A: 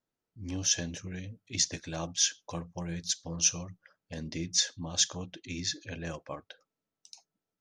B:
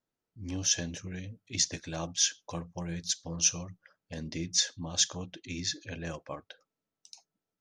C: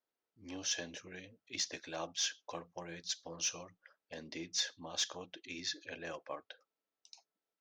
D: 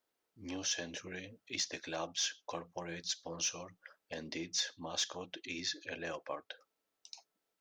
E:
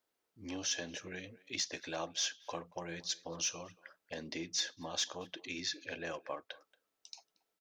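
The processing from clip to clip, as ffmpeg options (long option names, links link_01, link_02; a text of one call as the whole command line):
ffmpeg -i in.wav -af anull out.wav
ffmpeg -i in.wav -filter_complex "[0:a]asoftclip=type=tanh:threshold=-21dB,acrossover=split=300 5800:gain=0.112 1 0.112[link_01][link_02][link_03];[link_01][link_02][link_03]amix=inputs=3:normalize=0,volume=-2dB" out.wav
ffmpeg -i in.wav -af "acompressor=threshold=-50dB:ratio=1.5,volume=6.5dB" out.wav
ffmpeg -i in.wav -filter_complex "[0:a]asplit=2[link_01][link_02];[link_02]adelay=230,highpass=300,lowpass=3400,asoftclip=type=hard:threshold=-34dB,volume=-21dB[link_03];[link_01][link_03]amix=inputs=2:normalize=0" out.wav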